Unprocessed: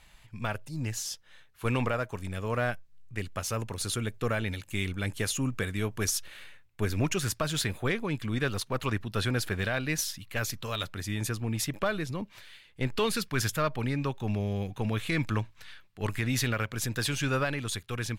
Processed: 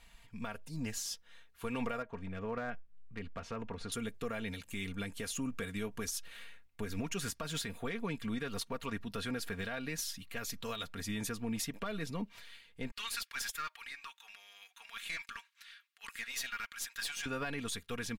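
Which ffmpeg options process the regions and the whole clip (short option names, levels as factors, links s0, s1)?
-filter_complex "[0:a]asettb=1/sr,asplit=3[s0][s1][s2];[s0]atrim=end=2.024[s3];[s1]atrim=start=2.02:end=3.92,asetpts=PTS-STARTPTS,afade=t=in:d=0.004:c=qsin,afade=t=out:st=1.896:d=0.004:c=qsin,lowpass=2400,acompressor=threshold=0.0282:ratio=3:attack=3.2:release=140:knee=1:detection=peak,asoftclip=type=hard:threshold=0.0531[s4];[s2]atrim=start=3.916[s5];[s3][s4]acrossfade=d=0.004:c1=hsin:c2=qsin[s6];[s6][s5]acrossfade=d=0.004:c1=qsin:c2=hsin,asettb=1/sr,asplit=3[s7][s8][s9];[s7]atrim=end=12.914[s10];[s8]atrim=start=12.91:end=17.26,asetpts=PTS-STARTPTS,afade=t=in:d=0.004:c=qsin,afade=t=out:st=4.346:d=0.004:c=qsin,highpass=f=1300:w=0.5412,highpass=f=1300:w=1.3066,aeval=exprs='(tanh(22.4*val(0)+0.35)-tanh(0.35))/22.4':c=same[s11];[s9]atrim=start=17.256[s12];[s10][s11]acrossfade=d=0.004:c1=hsin:c2=qsin[s13];[s13][s12]acrossfade=d=0.004:c1=qsin:c2=hsin,aecho=1:1:4.3:0.62,alimiter=limit=0.0708:level=0:latency=1:release=200,volume=0.596"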